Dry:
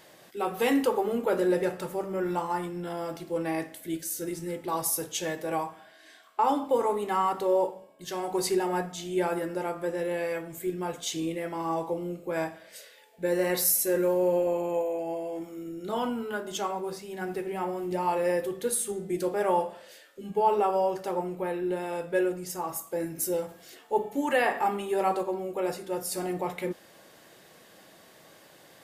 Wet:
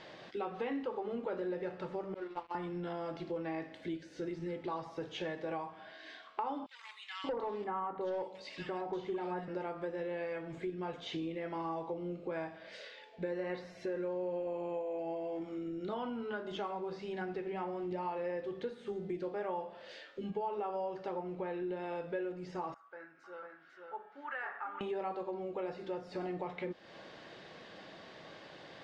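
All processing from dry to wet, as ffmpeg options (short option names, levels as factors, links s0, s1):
-filter_complex "[0:a]asettb=1/sr,asplit=3[s0][s1][s2];[s0]atrim=end=2.144[s3];[s1]atrim=start=2.14:end=2.55,asetpts=PTS-STARTPTS,afade=t=in:d=0.004:c=qsin,afade=t=out:st=0.406:d=0.004:c=qsin,highpass=f=250:w=0.5412,highpass=f=250:w=1.3066,agate=range=0.0224:threshold=0.0708:ratio=3:release=100:detection=peak,aeval=exprs='sgn(val(0))*max(abs(val(0))-0.00266,0)':c=same[s4];[s2]atrim=start=2.546[s5];[s3][s4]acrossfade=d=0.004:c1=hsin:c2=qsin[s6];[s6][s5]acrossfade=d=0.004:c1=qsin:c2=hsin,asettb=1/sr,asplit=3[s7][s8][s9];[s7]atrim=end=6.664[s10];[s8]atrim=start=6.66:end=9.48,asetpts=PTS-STARTPTS,afade=t=in:d=0.004:c=qsin,afade=t=out:st=2.816:d=0.004:c=qsin,asoftclip=type=hard:threshold=0.0944,acrossover=split=2100[s11][s12];[s11]adelay=580[s13];[s13][s12]amix=inputs=2:normalize=0,atrim=end_sample=124362[s14];[s9]atrim=start=9.476[s15];[s10][s14]acrossfade=d=0.004:c1=hsin:c2=qsin[s16];[s16][s15]acrossfade=d=0.004:c1=qsin:c2=hsin,asettb=1/sr,asplit=3[s17][s18][s19];[s17]atrim=end=22.744[s20];[s18]atrim=start=22.74:end=24.81,asetpts=PTS-STARTPTS,afade=t=in:d=0.004:c=qsin,afade=t=out:st=2.066:d=0.004:c=qsin,bandpass=f=1400:t=q:w=6.3,aecho=1:1:497:0.631,atrim=end_sample=91287[s21];[s19]atrim=start=24.806[s22];[s20][s21]acrossfade=d=0.004:c1=hsin:c2=qsin[s23];[s23][s22]acrossfade=d=0.004:c1=qsin:c2=hsin,acrossover=split=2700[s24][s25];[s25]acompressor=threshold=0.00447:ratio=4:attack=1:release=60[s26];[s24][s26]amix=inputs=2:normalize=0,lowpass=f=4600:w=0.5412,lowpass=f=4600:w=1.3066,acompressor=threshold=0.00891:ratio=4,volume=1.41"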